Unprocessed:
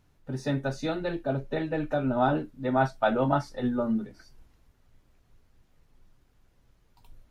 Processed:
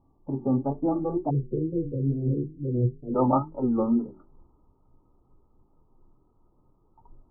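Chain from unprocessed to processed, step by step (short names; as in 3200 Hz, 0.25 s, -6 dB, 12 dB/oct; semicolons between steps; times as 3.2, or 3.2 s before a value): notches 50/100/150/200/250/300/350/400 Hz; wow and flutter 140 cents; rippled Chebyshev low-pass 1200 Hz, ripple 9 dB, from 1.29 s 500 Hz, from 3.14 s 1300 Hz; gain +8.5 dB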